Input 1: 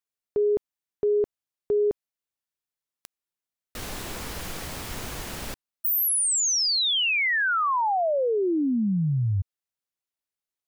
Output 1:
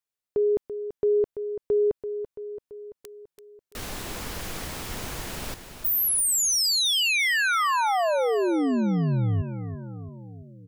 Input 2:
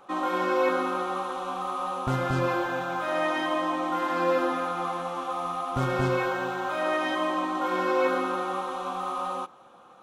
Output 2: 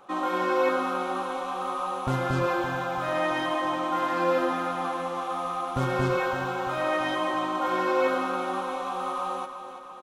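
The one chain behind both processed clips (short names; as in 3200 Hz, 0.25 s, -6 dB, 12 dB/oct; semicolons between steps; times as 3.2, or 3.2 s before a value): feedback echo 0.336 s, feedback 59%, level -10.5 dB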